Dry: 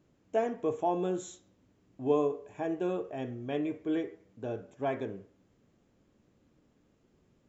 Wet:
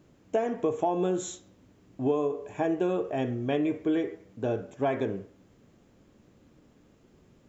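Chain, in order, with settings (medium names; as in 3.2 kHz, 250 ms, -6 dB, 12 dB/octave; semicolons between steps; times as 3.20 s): compression 10:1, threshold -31 dBFS, peak gain reduction 10 dB; trim +8.5 dB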